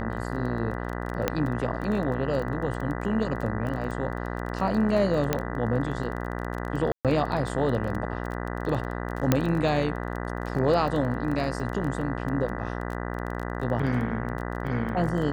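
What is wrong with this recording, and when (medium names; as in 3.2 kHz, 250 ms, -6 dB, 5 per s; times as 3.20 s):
buzz 60 Hz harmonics 33 -32 dBFS
crackle 17 per s -31 dBFS
1.28 s: pop -9 dBFS
5.33 s: pop -9 dBFS
6.92–7.05 s: dropout 127 ms
9.32 s: pop -6 dBFS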